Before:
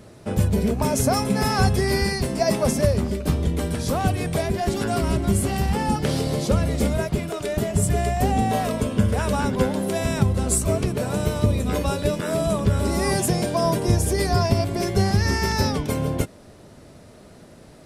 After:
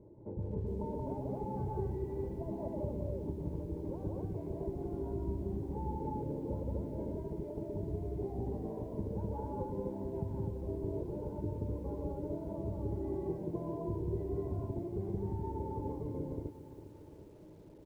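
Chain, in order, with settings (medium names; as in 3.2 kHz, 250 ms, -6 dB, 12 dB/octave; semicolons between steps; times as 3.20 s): reverb removal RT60 0.81 s; comb 2 ms, depth 73%; loudspeakers at several distances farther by 40 m -5 dB, 61 m -1 dB, 87 m 0 dB; compression 1.5:1, threshold -35 dBFS, peak gain reduction 9.5 dB; cascade formant filter u; bit-crushed delay 405 ms, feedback 55%, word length 10-bit, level -13 dB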